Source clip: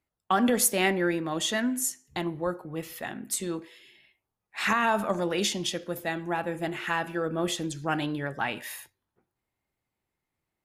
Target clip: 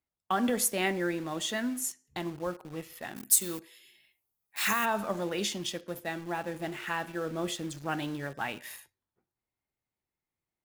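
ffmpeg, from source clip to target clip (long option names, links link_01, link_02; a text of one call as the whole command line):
ffmpeg -i in.wav -filter_complex "[0:a]asplit=2[link_01][link_02];[link_02]acrusher=bits=5:mix=0:aa=0.000001,volume=-6.5dB[link_03];[link_01][link_03]amix=inputs=2:normalize=0,asplit=3[link_04][link_05][link_06];[link_04]afade=type=out:start_time=3.15:duration=0.02[link_07];[link_05]aemphasis=mode=production:type=75fm,afade=type=in:start_time=3.15:duration=0.02,afade=type=out:start_time=4.84:duration=0.02[link_08];[link_06]afade=type=in:start_time=4.84:duration=0.02[link_09];[link_07][link_08][link_09]amix=inputs=3:normalize=0,volume=-8dB" out.wav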